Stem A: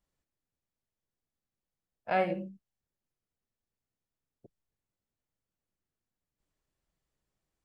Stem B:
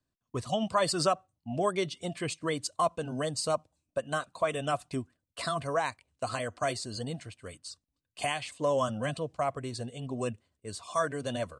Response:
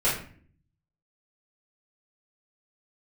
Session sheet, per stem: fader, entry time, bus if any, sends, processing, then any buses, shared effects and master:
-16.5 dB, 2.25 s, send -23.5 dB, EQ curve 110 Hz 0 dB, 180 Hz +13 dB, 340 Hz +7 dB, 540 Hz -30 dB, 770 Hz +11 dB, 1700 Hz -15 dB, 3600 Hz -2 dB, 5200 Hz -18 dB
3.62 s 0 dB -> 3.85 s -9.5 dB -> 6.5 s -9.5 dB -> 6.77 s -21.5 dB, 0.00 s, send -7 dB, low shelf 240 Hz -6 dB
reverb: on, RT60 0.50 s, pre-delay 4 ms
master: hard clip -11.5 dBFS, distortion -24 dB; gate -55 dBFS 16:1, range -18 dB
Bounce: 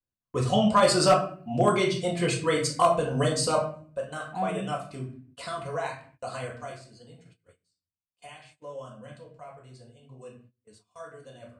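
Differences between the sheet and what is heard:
stem A -16.5 dB -> -8.5 dB; stem B: missing low shelf 240 Hz -6 dB

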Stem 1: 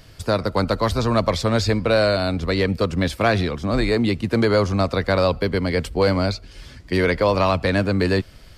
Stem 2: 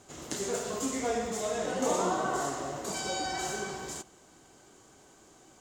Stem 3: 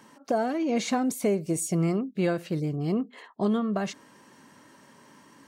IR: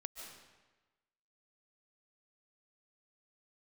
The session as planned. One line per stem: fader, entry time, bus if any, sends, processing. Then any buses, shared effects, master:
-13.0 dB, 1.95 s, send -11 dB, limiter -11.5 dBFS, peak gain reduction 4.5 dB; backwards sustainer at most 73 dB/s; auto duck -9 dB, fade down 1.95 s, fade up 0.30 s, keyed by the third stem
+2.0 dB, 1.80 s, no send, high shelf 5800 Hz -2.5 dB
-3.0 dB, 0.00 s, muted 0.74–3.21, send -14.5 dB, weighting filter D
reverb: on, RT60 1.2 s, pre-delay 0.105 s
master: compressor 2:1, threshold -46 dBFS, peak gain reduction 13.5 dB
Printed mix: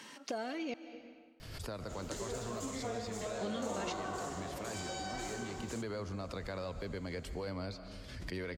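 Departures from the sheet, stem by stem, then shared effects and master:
stem 1: entry 1.95 s -> 1.40 s; reverb return +9.0 dB

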